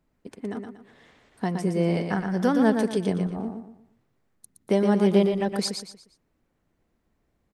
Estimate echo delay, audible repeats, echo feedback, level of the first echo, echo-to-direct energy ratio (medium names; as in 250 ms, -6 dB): 118 ms, 4, 34%, -6.0 dB, -5.5 dB